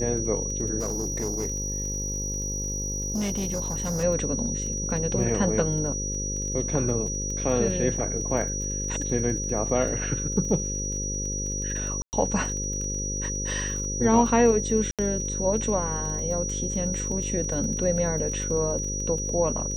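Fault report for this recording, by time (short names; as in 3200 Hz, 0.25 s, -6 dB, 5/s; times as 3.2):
buzz 50 Hz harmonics 11 -32 dBFS
crackle 21/s -33 dBFS
tone 5800 Hz -30 dBFS
0.79–4.04 clipped -24 dBFS
12.02–12.13 gap 0.109 s
14.91–14.99 gap 77 ms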